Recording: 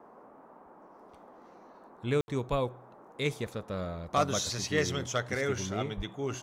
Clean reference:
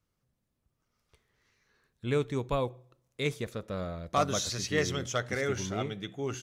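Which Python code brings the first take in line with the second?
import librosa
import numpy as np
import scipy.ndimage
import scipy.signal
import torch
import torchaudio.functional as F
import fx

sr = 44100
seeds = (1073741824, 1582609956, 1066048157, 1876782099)

y = fx.fix_deplosive(x, sr, at_s=(5.96,))
y = fx.fix_ambience(y, sr, seeds[0], print_start_s=0.31, print_end_s=0.81, start_s=2.21, end_s=2.28)
y = fx.noise_reduce(y, sr, print_start_s=0.31, print_end_s=0.81, reduce_db=25.0)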